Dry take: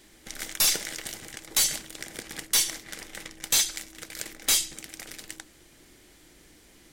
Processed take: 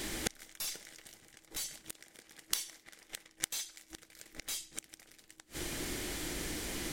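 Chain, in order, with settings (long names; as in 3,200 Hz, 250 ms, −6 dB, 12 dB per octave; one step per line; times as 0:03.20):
gate with flip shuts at −30 dBFS, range −33 dB
0:01.89–0:03.91: low-shelf EQ 220 Hz −7 dB
level +16 dB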